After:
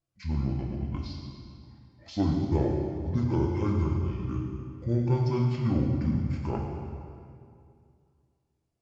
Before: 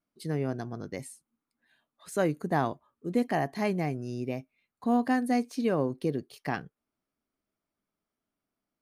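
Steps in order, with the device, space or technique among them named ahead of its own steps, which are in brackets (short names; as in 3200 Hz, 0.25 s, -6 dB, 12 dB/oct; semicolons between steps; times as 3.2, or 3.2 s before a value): monster voice (pitch shift -12 st; low shelf 150 Hz +5 dB; reverb RT60 2.4 s, pre-delay 85 ms, DRR 4 dB); two-slope reverb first 0.6 s, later 1.7 s, DRR 1 dB; gain -3 dB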